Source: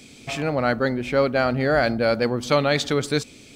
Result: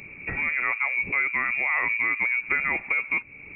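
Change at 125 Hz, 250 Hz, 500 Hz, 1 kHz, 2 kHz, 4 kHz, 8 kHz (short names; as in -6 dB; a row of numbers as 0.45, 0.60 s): -19.5 dB, -19.0 dB, -22.5 dB, -7.0 dB, +5.5 dB, under -25 dB, under -40 dB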